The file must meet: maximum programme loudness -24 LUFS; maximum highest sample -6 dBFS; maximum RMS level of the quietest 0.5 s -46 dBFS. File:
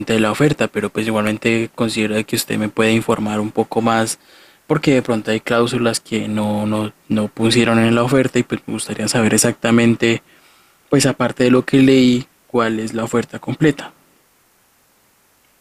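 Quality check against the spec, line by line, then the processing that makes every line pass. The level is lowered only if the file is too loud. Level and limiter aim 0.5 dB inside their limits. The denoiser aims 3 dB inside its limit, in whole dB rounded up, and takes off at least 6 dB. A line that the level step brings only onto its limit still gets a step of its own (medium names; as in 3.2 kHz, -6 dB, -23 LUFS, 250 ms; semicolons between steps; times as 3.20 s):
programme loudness -17.0 LUFS: fail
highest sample -2.0 dBFS: fail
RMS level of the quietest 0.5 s -57 dBFS: pass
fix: trim -7.5 dB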